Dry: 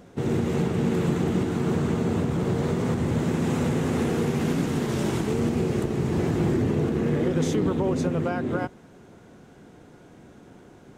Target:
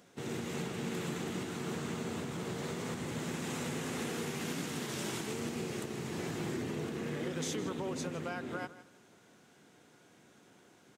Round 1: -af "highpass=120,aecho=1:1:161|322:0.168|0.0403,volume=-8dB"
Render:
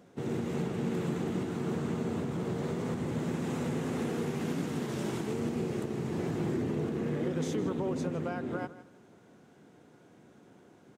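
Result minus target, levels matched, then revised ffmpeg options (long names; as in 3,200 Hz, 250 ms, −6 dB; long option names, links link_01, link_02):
1,000 Hz band −2.5 dB
-af "highpass=120,tiltshelf=frequency=1300:gain=-6.5,aecho=1:1:161|322:0.168|0.0403,volume=-8dB"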